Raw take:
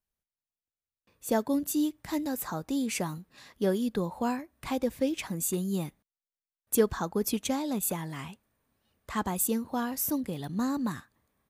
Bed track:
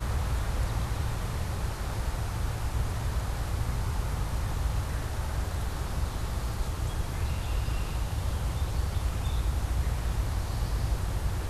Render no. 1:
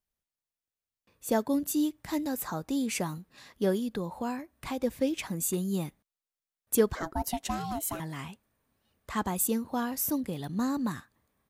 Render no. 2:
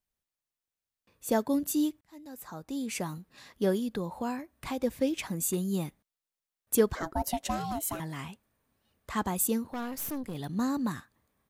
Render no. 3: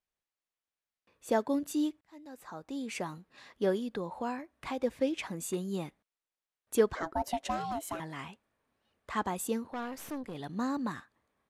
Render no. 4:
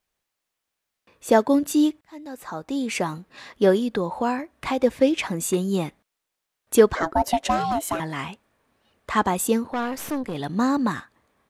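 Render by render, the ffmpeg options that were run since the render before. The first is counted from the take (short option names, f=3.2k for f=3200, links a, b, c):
-filter_complex "[0:a]asettb=1/sr,asplit=3[a][b][c];[a]atrim=end=3.794[d];[b]atrim=start=3.79:end=4.84,asetpts=PTS-STARTPTS,afade=t=in:d=0.004:c=qsin,afade=t=out:st=1.046:d=0.004:c=qsin,acompressor=threshold=-34dB:ratio=1.5:attack=3.2:release=140:knee=1:detection=peak[e];[c]atrim=start=4.836[f];[d][e]acrossfade=d=0.004:c1=hsin:c2=qsin[g];[g][f]acrossfade=d=0.004:c1=qsin:c2=hsin,asettb=1/sr,asplit=3[h][i][j];[h]atrim=end=6.954[k];[i]atrim=start=6.95:end=8,asetpts=PTS-STARTPTS,afade=t=in:d=0.004:c=qsin,afade=t=out:st=1.046:d=0.004:c=qsin,aeval=exprs='val(0)*sin(2*PI*480*n/s)':c=same[l];[j]atrim=start=7.996[m];[k][l]acrossfade=d=0.004:c1=hsin:c2=qsin[n];[n][m]acrossfade=d=0.004:c1=qsin:c2=hsin"
-filter_complex "[0:a]asettb=1/sr,asplit=3[a][b][c];[a]atrim=end=7.154[d];[b]atrim=start=7.15:end=7.72,asetpts=PTS-STARTPTS,afade=t=in:d=0.004:c=qsin,afade=t=out:st=0.566:d=0.004:c=qsin,equalizer=f=570:t=o:w=0.29:g=10[e];[c]atrim=start=7.716[f];[d][e]acrossfade=d=0.004:c1=hsin:c2=qsin[g];[g][f]acrossfade=d=0.004:c1=qsin:c2=hsin,asettb=1/sr,asplit=3[h][i][j];[h]atrim=end=9.674[k];[i]atrim=start=9.67:end=10.35,asetpts=PTS-STARTPTS,afade=t=in:d=0.004:c=qsin,afade=t=out:st=0.676:d=0.004:c=qsin,aeval=exprs='(tanh(39.8*val(0)+0.5)-tanh(0.5))/39.8':c=same[l];[j]atrim=start=10.346[m];[k][l]acrossfade=d=0.004:c1=hsin:c2=qsin[n];[n][m]acrossfade=d=0.004:c1=qsin:c2=hsin,asplit=2[o][p];[o]atrim=end=2.01,asetpts=PTS-STARTPTS,afade=t=out:st=2.006:d=0.004:c=hsin[q];[p]atrim=start=2.01,asetpts=PTS-STARTPTS,afade=t=in:d=1.33[r];[q][r]concat=n=2:v=0:a=1"
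-af "lowpass=9.8k,bass=f=250:g=-8,treble=f=4k:g=-7"
-af "volume=11.5dB,alimiter=limit=-3dB:level=0:latency=1"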